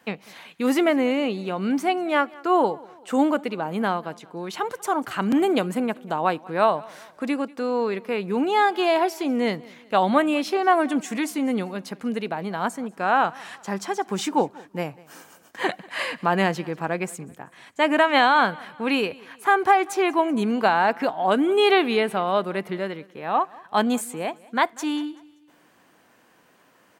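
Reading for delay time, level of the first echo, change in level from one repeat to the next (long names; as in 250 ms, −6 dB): 192 ms, −23.0 dB, −7.5 dB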